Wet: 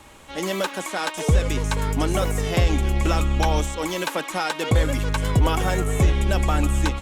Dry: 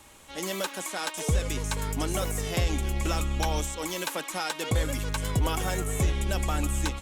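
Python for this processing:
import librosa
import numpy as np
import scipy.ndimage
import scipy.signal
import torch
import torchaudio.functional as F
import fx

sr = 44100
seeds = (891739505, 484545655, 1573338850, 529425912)

y = fx.high_shelf(x, sr, hz=4600.0, db=-9.5)
y = y * librosa.db_to_amplitude(7.5)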